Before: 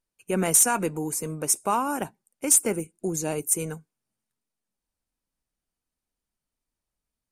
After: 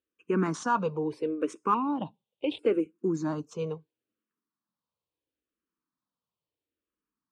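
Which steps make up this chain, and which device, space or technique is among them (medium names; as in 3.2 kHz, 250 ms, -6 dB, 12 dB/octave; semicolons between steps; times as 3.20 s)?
1.74–2.59 s: FFT filter 810 Hz 0 dB, 1.6 kHz -23 dB, 2.5 kHz +5 dB, 3.6 kHz +8 dB, 5.4 kHz -21 dB; barber-pole phaser into a guitar amplifier (barber-pole phaser -0.74 Hz; saturation -13 dBFS, distortion -22 dB; cabinet simulation 110–4100 Hz, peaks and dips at 310 Hz +7 dB, 470 Hz +5 dB, 730 Hz -7 dB, 1.1 kHz +8 dB, 2.1 kHz -7 dB)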